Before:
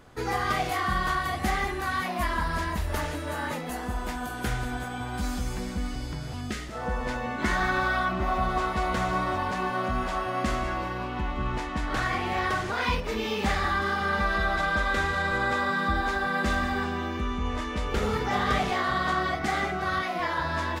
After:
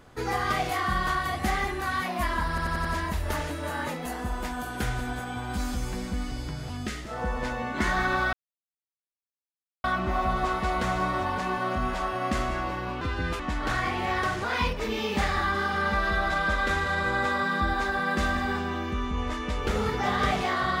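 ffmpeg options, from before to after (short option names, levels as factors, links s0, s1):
-filter_complex "[0:a]asplit=8[s0][s1][s2][s3][s4][s5][s6][s7];[s0]atrim=end=2.582[s8];[s1]atrim=start=2.488:end=2.582[s9];[s2]atrim=start=2.488:end=2.582[s10];[s3]atrim=start=2.488:end=2.582[s11];[s4]atrim=start=2.488:end=7.97,asetpts=PTS-STARTPTS,afade=t=out:st=5.478:d=0.004:c=hsin,apad=pad_dur=1.51[s12];[s5]atrim=start=7.97:end=11.144,asetpts=PTS-STARTPTS,afade=t=in:d=0.004:c=hsin[s13];[s6]atrim=start=11.14:end=11.67,asetpts=PTS-STARTPTS,asetrate=60417,aresample=44100[s14];[s7]atrim=start=11.666[s15];[s8][s9]acrossfade=d=0.004:c1=hsin:c2=hsin[s16];[s16][s10]acrossfade=d=0.004:c1=hsin:c2=hsin[s17];[s17][s11]acrossfade=d=0.004:c1=hsin:c2=hsin[s18];[s12][s13]concat=n=2:v=0:a=1[s19];[s18][s19]acrossfade=d=0.004:c1=hsin:c2=hsin[s20];[s20][s14]acrossfade=d=0.004:c1=hsin:c2=hsin[s21];[s21][s15]acrossfade=d=0.004:c1=hsin:c2=hsin"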